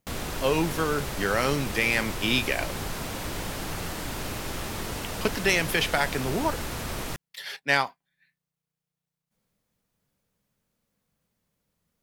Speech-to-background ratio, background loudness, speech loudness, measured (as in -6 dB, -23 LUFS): 7.0 dB, -33.5 LUFS, -26.5 LUFS